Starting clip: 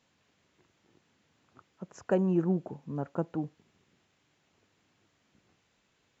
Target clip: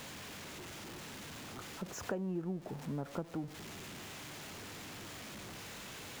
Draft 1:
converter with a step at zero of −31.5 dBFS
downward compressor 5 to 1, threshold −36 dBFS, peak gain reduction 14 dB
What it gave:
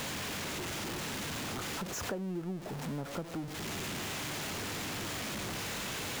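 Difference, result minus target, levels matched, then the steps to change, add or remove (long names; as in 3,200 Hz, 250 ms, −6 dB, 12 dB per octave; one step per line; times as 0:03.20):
converter with a step at zero: distortion +9 dB
change: converter with a step at zero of −42 dBFS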